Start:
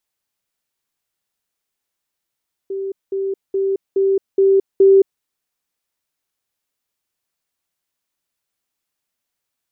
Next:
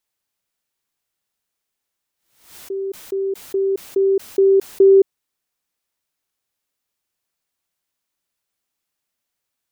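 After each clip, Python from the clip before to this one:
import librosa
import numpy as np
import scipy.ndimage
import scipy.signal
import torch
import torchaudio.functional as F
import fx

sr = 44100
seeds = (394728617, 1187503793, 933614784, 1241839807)

y = fx.pre_swell(x, sr, db_per_s=100.0)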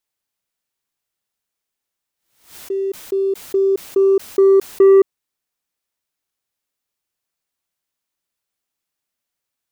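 y = fx.leveller(x, sr, passes=1)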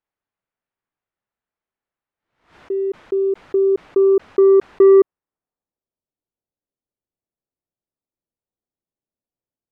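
y = fx.filter_sweep_lowpass(x, sr, from_hz=1700.0, to_hz=530.0, start_s=4.84, end_s=5.97, q=0.8)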